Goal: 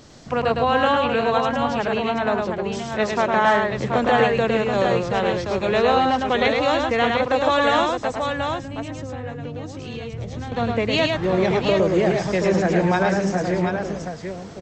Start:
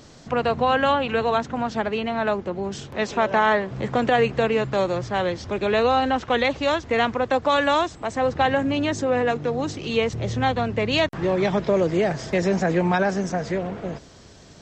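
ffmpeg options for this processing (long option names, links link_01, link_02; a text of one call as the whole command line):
ffmpeg -i in.wav -filter_complex "[0:a]asettb=1/sr,asplit=3[link_01][link_02][link_03];[link_01]atrim=end=8.094[link_04];[link_02]atrim=start=8.09:end=10.52,asetpts=PTS-STARTPTS,afade=type=in:duration=0.004:curve=qsin,afade=type=out:start_time=2.426:duration=0.004:curve=qsin,acrossover=split=150[link_05][link_06];[link_06]acompressor=threshold=-37dB:ratio=4[link_07];[link_05][link_07]amix=inputs=2:normalize=0[link_08];[link_03]atrim=start=10.516[link_09];[link_04][link_08]acrossfade=duration=0.004:curve1=hsin:curve2=qsin[link_10];[link_10][link_09]acrossfade=duration=0.004:curve1=qsin:curve2=hsin,aecho=1:1:108|729:0.668|0.531" out.wav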